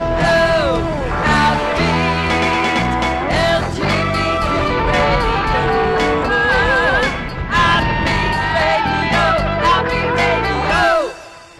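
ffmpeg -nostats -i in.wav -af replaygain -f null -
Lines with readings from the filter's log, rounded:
track_gain = -2.6 dB
track_peak = 0.414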